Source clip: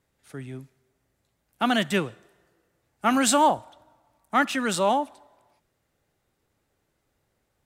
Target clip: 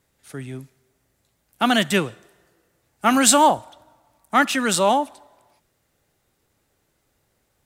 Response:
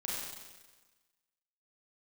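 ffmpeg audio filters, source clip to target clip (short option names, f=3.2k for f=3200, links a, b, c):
-af "highshelf=f=4k:g=5.5,volume=4dB"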